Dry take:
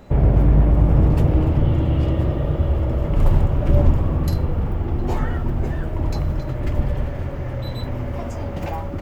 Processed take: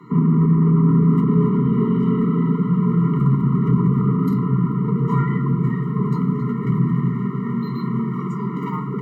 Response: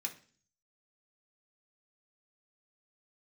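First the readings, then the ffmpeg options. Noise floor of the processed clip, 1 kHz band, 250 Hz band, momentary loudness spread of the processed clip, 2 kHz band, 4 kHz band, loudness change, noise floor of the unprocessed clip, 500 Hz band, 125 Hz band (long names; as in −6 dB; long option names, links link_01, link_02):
−26 dBFS, +2.5 dB, +8.0 dB, 9 LU, −2.0 dB, can't be measured, +2.0 dB, −28 dBFS, −0.5 dB, +1.0 dB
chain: -filter_complex "[0:a]highshelf=frequency=2100:width_type=q:width=1.5:gain=-6.5,alimiter=limit=-9.5dB:level=0:latency=1:release=105,afreqshift=110,asoftclip=type=tanh:threshold=-14.5dB,asplit=2[link_01][link_02];[1:a]atrim=start_sample=2205,asetrate=24696,aresample=44100,lowpass=2500[link_03];[link_02][link_03]afir=irnorm=-1:irlink=0,volume=-2dB[link_04];[link_01][link_04]amix=inputs=2:normalize=0,afftfilt=real='re*eq(mod(floor(b*sr/1024/460),2),0)':imag='im*eq(mod(floor(b*sr/1024/460),2),0)':win_size=1024:overlap=0.75"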